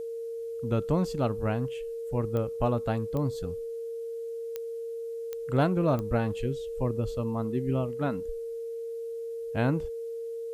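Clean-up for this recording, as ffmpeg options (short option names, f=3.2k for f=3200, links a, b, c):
-af "adeclick=t=4,bandreject=f=460:w=30,agate=range=-21dB:threshold=-28dB"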